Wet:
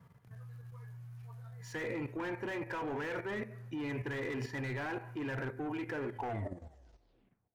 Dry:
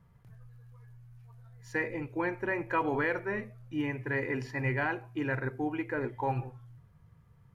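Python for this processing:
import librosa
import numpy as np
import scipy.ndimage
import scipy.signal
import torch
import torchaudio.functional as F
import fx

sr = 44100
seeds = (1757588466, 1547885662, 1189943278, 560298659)

y = fx.tape_stop_end(x, sr, length_s=1.42)
y = scipy.signal.sosfilt(scipy.signal.butter(2, 120.0, 'highpass', fs=sr, output='sos'), y)
y = fx.rev_double_slope(y, sr, seeds[0], early_s=0.66, late_s=2.9, knee_db=-28, drr_db=16.5)
y = 10.0 ** (-31.5 / 20.0) * np.tanh(y / 10.0 ** (-31.5 / 20.0))
y = fx.level_steps(y, sr, step_db=11)
y = fx.slew_limit(y, sr, full_power_hz=10.0)
y = y * librosa.db_to_amplitude(7.0)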